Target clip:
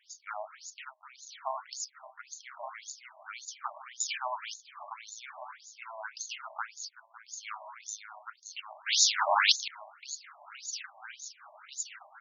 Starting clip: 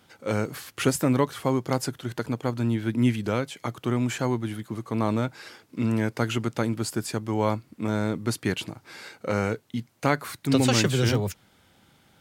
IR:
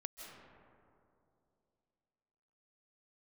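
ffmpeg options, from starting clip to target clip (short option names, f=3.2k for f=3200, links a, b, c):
-filter_complex "[0:a]highshelf=f=7.2k:t=q:w=3:g=8,aecho=1:1:1169|2338|3507|4676:0.299|0.116|0.0454|0.0177,acrossover=split=410[a][b];[a]aeval=exprs='max(val(0),0)':c=same[c];[c][b]amix=inputs=2:normalize=0,aexciter=amount=14.4:drive=6.5:freq=5.6k,asplit=2[d][e];[1:a]atrim=start_sample=2205,adelay=38[f];[e][f]afir=irnorm=-1:irlink=0,volume=-8dB[g];[d][g]amix=inputs=2:normalize=0,acompressor=threshold=-12dB:ratio=16,asettb=1/sr,asplit=3[h][i][j];[h]atrim=end=4.004[k];[i]atrim=start=4:end=4.54,asetpts=PTS-STARTPTS,afade=t=in:d=0.004:c=qsin,afade=t=out:st=0.536:d=0.004:c=qsin,equalizer=f=4.9k:w=0.34:g=12[l];[j]atrim=start=4.536[m];[k][l]acrossfade=d=0.004:c1=hsin:c2=qsin[n];[n][m]acrossfade=d=0.004:c1=qsin:c2=hsin,asettb=1/sr,asplit=3[o][p][q];[o]atrim=end=8.864[r];[p]atrim=start=8.86:end=9.68,asetpts=PTS-STARTPTS,afade=t=in:d=0.004:c=qsin,afade=t=out:st=0.816:d=0.004:c=qsin,aeval=exprs='0.531*sin(PI/2*3.98*val(0)/0.531)':c=same[s];[q]atrim=start=9.676[t];[r][s]acrossfade=d=0.004:c1=hsin:c2=qsin[u];[u][t]acrossfade=d=0.004:c1=qsin:c2=hsin,afftfilt=real='re*between(b*sr/1024,790*pow(5100/790,0.5+0.5*sin(2*PI*1.8*pts/sr))/1.41,790*pow(5100/790,0.5+0.5*sin(2*PI*1.8*pts/sr))*1.41)':imag='im*between(b*sr/1024,790*pow(5100/790,0.5+0.5*sin(2*PI*1.8*pts/sr))/1.41,790*pow(5100/790,0.5+0.5*sin(2*PI*1.8*pts/sr))*1.41)':win_size=1024:overlap=0.75"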